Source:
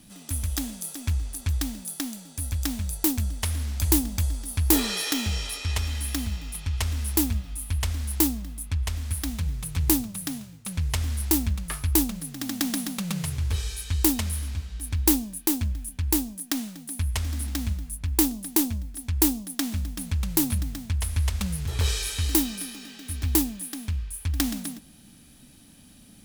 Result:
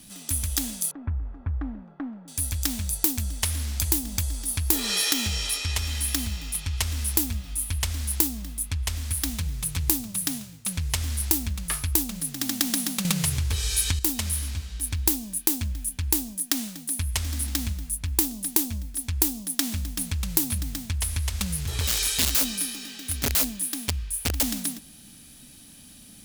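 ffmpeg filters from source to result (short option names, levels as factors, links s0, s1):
-filter_complex "[0:a]asettb=1/sr,asplit=3[s0][s1][s2];[s0]atrim=end=0.914[s3];[s1]atrim=start=0.91:end=2.28,asetpts=PTS-STARTPTS,afade=t=in:d=0.004:c=qsin,afade=t=out:st=1.366:d=0.004:c=qsin,lowpass=f=1400:w=0.5412,lowpass=f=1400:w=1.3066[s4];[s2]atrim=start=2.276[s5];[s3][s4]acrossfade=d=0.004:c1=hsin:c2=qsin[s6];[s6][s5]acrossfade=d=0.004:c1=qsin:c2=hsin,asettb=1/sr,asplit=3[s7][s8][s9];[s7]atrim=end=21.874[s10];[s8]atrim=start=21.87:end=24.43,asetpts=PTS-STARTPTS,afade=t=in:d=0.004:c=qsin,afade=t=out:st=2.556:d=0.004:c=qsin,aeval=exprs='(mod(10.6*val(0)+1,2)-1)/10.6':c=same[s11];[s9]atrim=start=24.426[s12];[s10][s11]acrossfade=d=0.004:c1=hsin:c2=qsin[s13];[s13][s12]acrossfade=d=0.004:c1=qsin:c2=hsin,asplit=3[s14][s15][s16];[s14]atrim=end=13.052[s17];[s15]atrim=start=13.048:end=13.992,asetpts=PTS-STARTPTS,volume=3.35[s18];[s16]atrim=start=13.988[s19];[s17][s18]acrossfade=d=0.004:c1=hsin:c2=hsin[s20];[s20][s19]acrossfade=d=0.004:c1=hsin:c2=hsin,acompressor=threshold=0.0631:ratio=6,highshelf=f=2300:g=7.5"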